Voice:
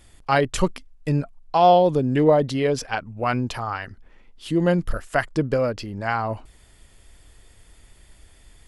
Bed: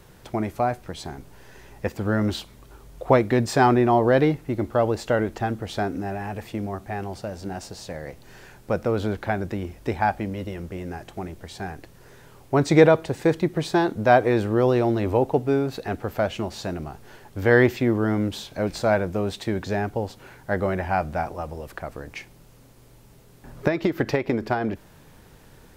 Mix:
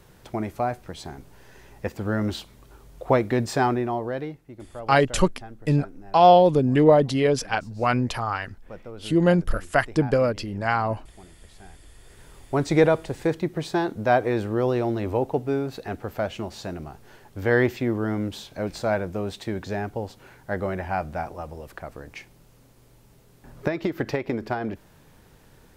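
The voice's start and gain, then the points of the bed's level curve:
4.60 s, +1.0 dB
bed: 0:03.52 −2.5 dB
0:04.47 −16.5 dB
0:11.81 −16.5 dB
0:12.24 −3.5 dB

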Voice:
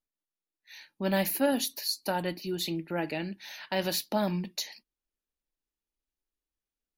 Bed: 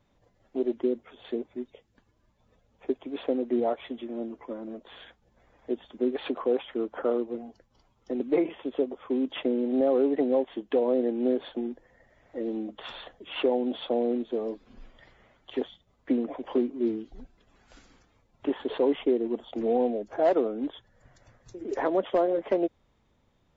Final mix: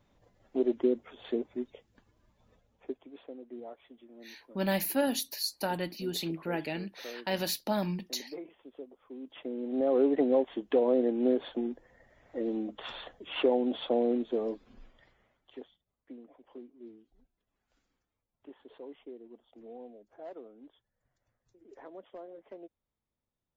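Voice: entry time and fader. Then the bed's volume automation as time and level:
3.55 s, −2.0 dB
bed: 0:02.50 0 dB
0:03.28 −18 dB
0:09.13 −18 dB
0:10.02 −1 dB
0:14.51 −1 dB
0:16.07 −22 dB

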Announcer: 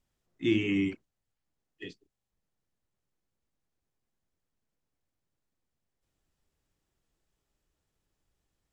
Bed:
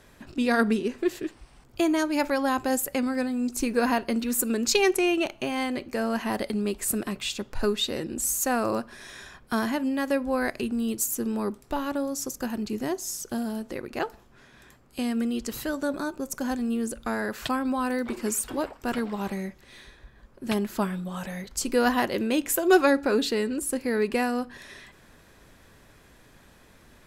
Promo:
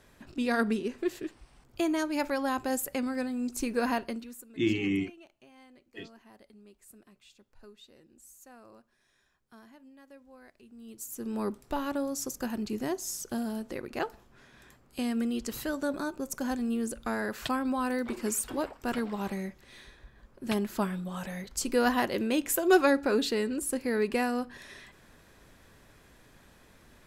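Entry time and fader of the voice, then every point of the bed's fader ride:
4.15 s, −1.0 dB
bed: 0:04.04 −5 dB
0:04.50 −27.5 dB
0:10.60 −27.5 dB
0:11.41 −3 dB

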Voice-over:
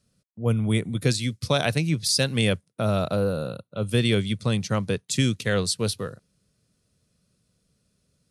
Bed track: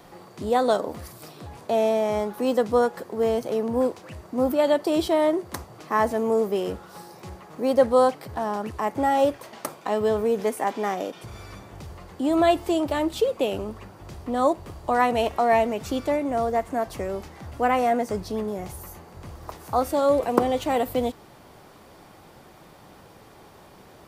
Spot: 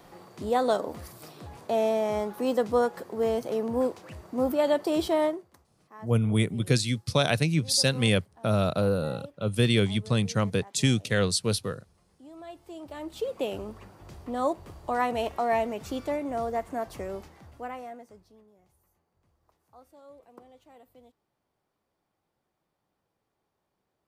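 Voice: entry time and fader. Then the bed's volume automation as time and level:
5.65 s, −1.0 dB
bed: 0:05.25 −3.5 dB
0:05.54 −25.5 dB
0:12.44 −25.5 dB
0:13.39 −6 dB
0:17.16 −6 dB
0:18.49 −31 dB

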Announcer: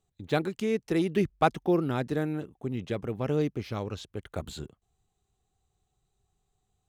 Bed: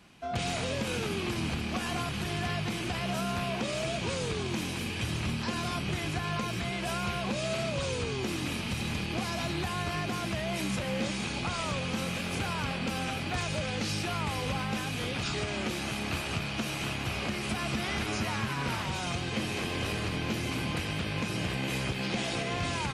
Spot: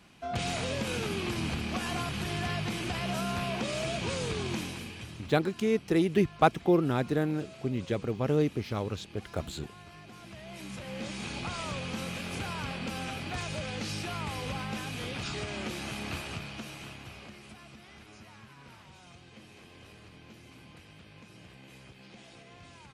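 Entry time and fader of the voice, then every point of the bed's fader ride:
5.00 s, +1.0 dB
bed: 0:04.53 −0.5 dB
0:05.39 −17.5 dB
0:10.02 −17.5 dB
0:11.30 −3.5 dB
0:16.12 −3.5 dB
0:17.80 −20 dB

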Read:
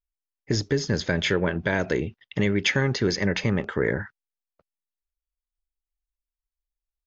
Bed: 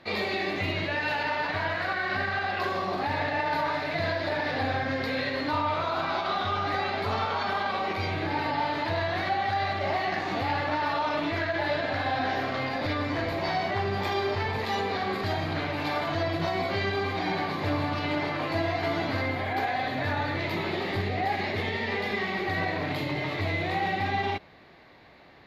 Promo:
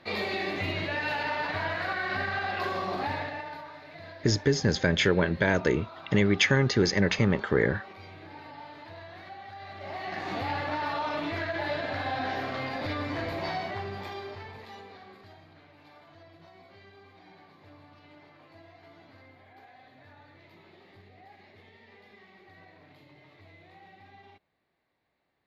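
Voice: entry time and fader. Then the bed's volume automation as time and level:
3.75 s, 0.0 dB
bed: 0:03.08 −2 dB
0:03.69 −17 dB
0:09.57 −17 dB
0:10.29 −3.5 dB
0:13.45 −3.5 dB
0:15.54 −25.5 dB

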